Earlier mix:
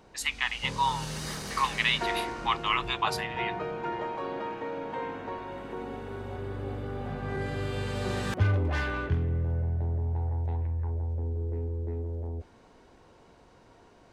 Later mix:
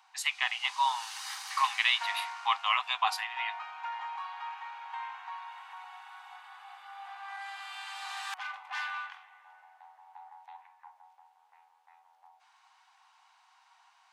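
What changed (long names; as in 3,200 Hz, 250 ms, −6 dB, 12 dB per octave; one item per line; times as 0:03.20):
speech: remove Chebyshev high-pass filter 810 Hz, order 6
master: add Chebyshev high-pass with heavy ripple 760 Hz, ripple 3 dB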